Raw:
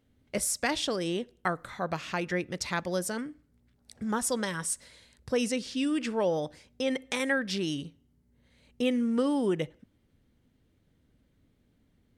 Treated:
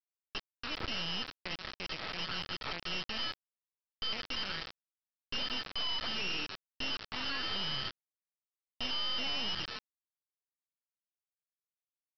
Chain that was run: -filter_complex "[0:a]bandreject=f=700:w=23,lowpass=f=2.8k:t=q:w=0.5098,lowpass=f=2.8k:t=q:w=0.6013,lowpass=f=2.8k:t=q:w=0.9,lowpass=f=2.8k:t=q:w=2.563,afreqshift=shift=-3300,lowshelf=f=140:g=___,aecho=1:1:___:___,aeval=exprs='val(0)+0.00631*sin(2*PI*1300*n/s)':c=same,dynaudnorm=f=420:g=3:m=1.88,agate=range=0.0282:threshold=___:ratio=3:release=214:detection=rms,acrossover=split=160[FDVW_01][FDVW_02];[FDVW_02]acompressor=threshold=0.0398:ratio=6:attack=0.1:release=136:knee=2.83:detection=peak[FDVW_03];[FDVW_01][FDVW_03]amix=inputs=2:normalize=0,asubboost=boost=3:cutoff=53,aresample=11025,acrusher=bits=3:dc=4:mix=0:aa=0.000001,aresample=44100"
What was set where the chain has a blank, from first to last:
-2, 577, 0.0841, 0.0316